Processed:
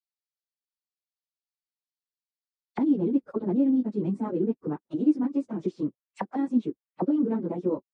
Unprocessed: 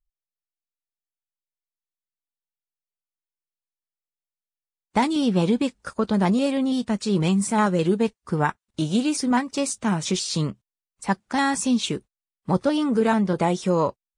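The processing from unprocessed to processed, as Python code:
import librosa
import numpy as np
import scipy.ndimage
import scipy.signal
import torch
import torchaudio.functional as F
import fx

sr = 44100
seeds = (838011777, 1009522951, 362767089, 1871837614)

y = fx.stretch_vocoder_free(x, sr, factor=0.56)
y = fx.auto_wah(y, sr, base_hz=310.0, top_hz=4500.0, q=3.2, full_db=-25.0, direction='down')
y = fx.high_shelf(y, sr, hz=8000.0, db=-4.0)
y = F.gain(torch.from_numpy(y), 5.5).numpy()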